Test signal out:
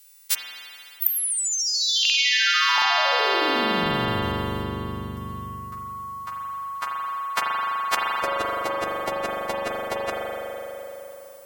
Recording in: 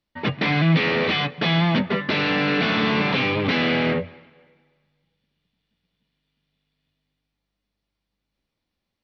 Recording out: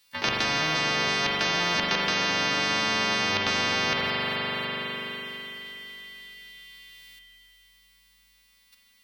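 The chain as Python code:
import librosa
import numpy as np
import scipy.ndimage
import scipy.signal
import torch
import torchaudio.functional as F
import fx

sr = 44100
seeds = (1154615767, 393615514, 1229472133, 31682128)

y = fx.freq_snap(x, sr, grid_st=2)
y = fx.tilt_shelf(y, sr, db=-9.0, hz=970.0)
y = fx.level_steps(y, sr, step_db=10)
y = fx.rev_spring(y, sr, rt60_s=3.0, pass_ms=(41,), chirp_ms=45, drr_db=-1.5)
y = fx.spectral_comp(y, sr, ratio=4.0)
y = y * librosa.db_to_amplitude(-5.5)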